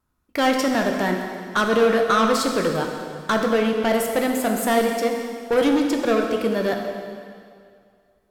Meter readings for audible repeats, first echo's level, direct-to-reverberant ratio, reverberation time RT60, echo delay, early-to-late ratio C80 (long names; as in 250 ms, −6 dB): no echo audible, no echo audible, 2.0 dB, 2.2 s, no echo audible, 5.0 dB